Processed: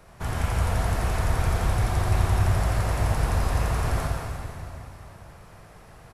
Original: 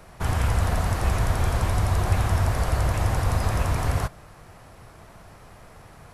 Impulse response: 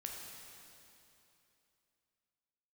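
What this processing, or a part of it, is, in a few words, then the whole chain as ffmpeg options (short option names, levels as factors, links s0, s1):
cave: -filter_complex "[0:a]aecho=1:1:177:0.376[s0];[1:a]atrim=start_sample=2205[s1];[s0][s1]afir=irnorm=-1:irlink=0"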